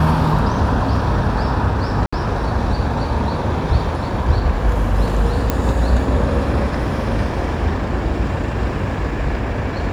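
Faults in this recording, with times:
2.06–2.12 gap 65 ms
5.5 pop -3 dBFS

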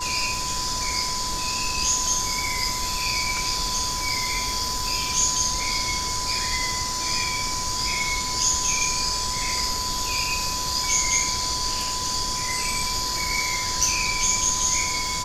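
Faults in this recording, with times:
crackle 15/s -31 dBFS
tone 1000 Hz -30 dBFS

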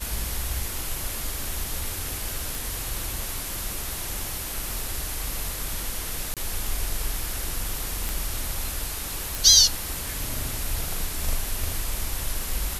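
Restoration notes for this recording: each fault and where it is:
2.55 pop
6.34–6.37 gap 27 ms
8.09 pop
9.35 pop

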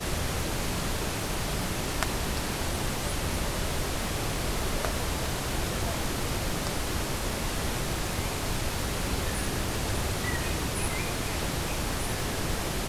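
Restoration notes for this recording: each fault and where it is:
crackle 310/s -38 dBFS

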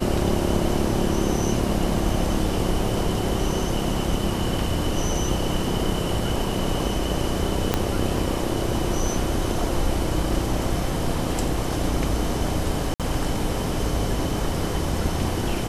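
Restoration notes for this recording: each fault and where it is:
7.74 pop -5 dBFS
12.94–13 gap 57 ms

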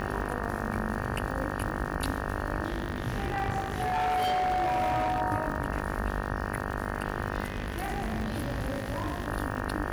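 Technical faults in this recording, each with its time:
buzz 50 Hz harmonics 37 -34 dBFS
crackle 95/s -35 dBFS
2.68–5.22 clipped -24.5 dBFS
7.44–9.28 clipped -26.5 dBFS

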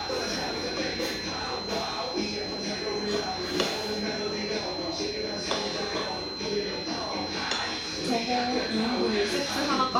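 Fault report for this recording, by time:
tone 4100 Hz -35 dBFS

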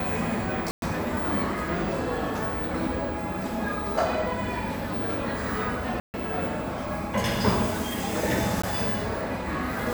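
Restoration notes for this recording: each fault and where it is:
0.71–0.82 gap 0.112 s
6–6.14 gap 0.139 s
8.62–8.63 gap 15 ms

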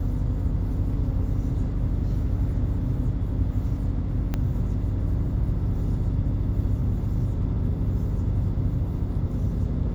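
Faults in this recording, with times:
4.34 pop -14 dBFS

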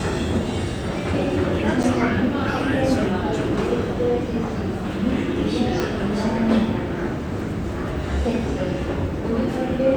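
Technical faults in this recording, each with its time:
1.83–1.84 gap 8 ms
5.8 pop -9 dBFS

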